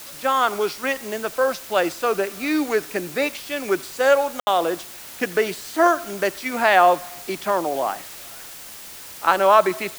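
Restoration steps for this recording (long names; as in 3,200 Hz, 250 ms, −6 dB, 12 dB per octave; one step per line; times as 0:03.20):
ambience match 0:04.40–0:04.47
broadband denoise 26 dB, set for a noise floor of −39 dBFS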